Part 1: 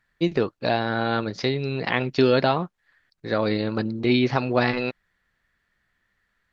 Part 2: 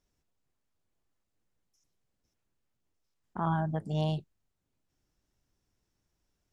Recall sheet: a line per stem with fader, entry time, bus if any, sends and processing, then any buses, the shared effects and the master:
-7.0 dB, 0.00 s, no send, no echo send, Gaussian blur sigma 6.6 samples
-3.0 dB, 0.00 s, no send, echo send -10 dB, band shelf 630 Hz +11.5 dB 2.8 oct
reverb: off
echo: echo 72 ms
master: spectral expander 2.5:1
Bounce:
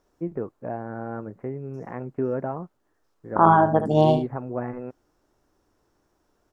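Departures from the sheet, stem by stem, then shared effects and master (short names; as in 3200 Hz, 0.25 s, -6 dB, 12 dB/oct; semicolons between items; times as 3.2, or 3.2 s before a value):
stem 2 -3.0 dB -> +5.5 dB; master: missing spectral expander 2.5:1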